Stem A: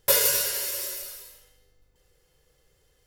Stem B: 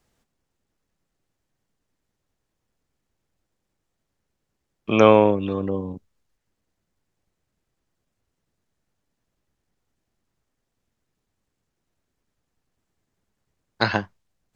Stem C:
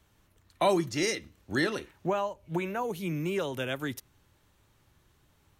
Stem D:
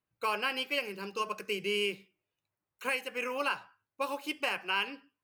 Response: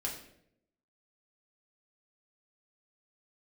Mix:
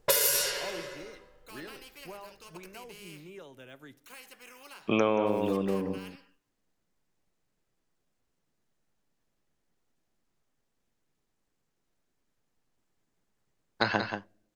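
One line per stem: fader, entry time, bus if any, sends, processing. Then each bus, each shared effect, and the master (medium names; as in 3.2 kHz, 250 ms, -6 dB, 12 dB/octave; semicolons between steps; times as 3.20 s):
+2.5 dB, 0.00 s, no send, no echo send, level-controlled noise filter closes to 960 Hz, open at -18 dBFS
-3.0 dB, 0.00 s, send -21 dB, echo send -8.5 dB, none
-17.0 dB, 0.00 s, send -16 dB, no echo send, de-esser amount 95%
-15.0 dB, 1.25 s, no send, no echo send, spectrum-flattening compressor 2:1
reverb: on, RT60 0.75 s, pre-delay 5 ms
echo: delay 180 ms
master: peaking EQ 78 Hz -11 dB 0.87 oct; compression 10:1, threshold -21 dBFS, peak gain reduction 11 dB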